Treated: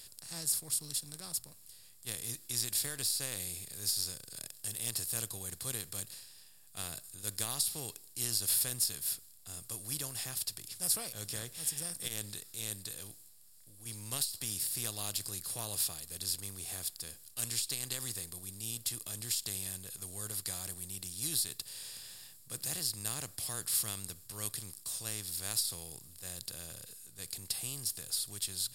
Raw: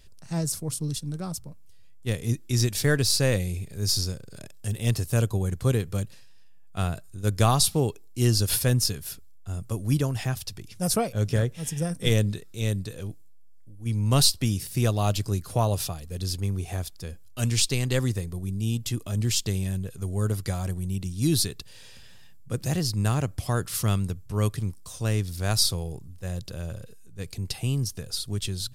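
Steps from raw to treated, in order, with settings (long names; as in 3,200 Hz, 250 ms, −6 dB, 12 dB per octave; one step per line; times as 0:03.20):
compressor on every frequency bin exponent 0.6
first-order pre-emphasis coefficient 0.9
notch filter 6,100 Hz, Q 6.6
saturating transformer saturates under 840 Hz
level −5.5 dB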